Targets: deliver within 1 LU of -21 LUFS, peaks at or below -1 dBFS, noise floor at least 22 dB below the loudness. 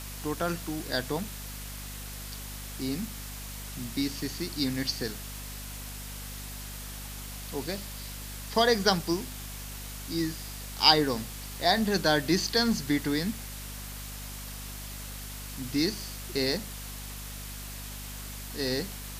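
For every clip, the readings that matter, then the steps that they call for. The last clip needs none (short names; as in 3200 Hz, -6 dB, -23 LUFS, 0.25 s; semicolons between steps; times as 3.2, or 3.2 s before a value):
hum 50 Hz; harmonics up to 250 Hz; hum level -40 dBFS; noise floor -40 dBFS; noise floor target -53 dBFS; loudness -31.0 LUFS; peak -5.0 dBFS; loudness target -21.0 LUFS
-> de-hum 50 Hz, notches 5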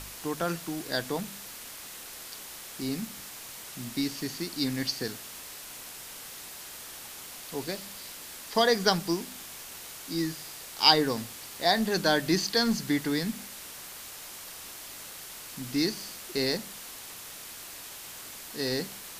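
hum none; noise floor -44 dBFS; noise floor target -53 dBFS
-> noise print and reduce 9 dB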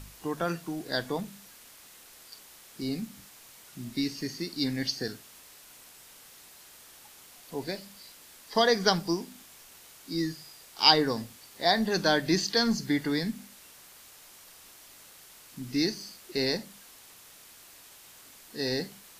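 noise floor -53 dBFS; loudness -28.5 LUFS; peak -5.0 dBFS; loudness target -21.0 LUFS
-> gain +7.5 dB; limiter -1 dBFS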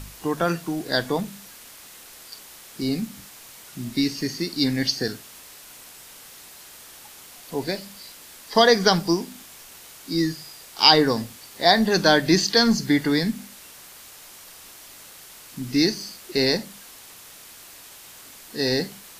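loudness -21.5 LUFS; peak -1.0 dBFS; noise floor -45 dBFS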